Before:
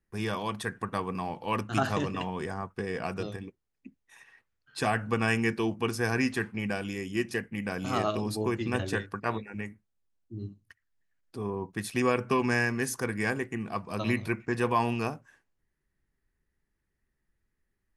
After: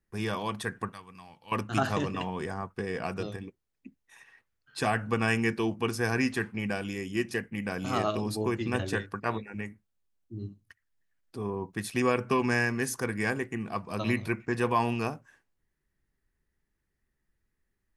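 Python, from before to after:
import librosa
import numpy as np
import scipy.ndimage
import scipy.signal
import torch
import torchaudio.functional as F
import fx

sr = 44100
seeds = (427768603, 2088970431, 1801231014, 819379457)

y = fx.tone_stack(x, sr, knobs='5-5-5', at=(0.92, 1.52))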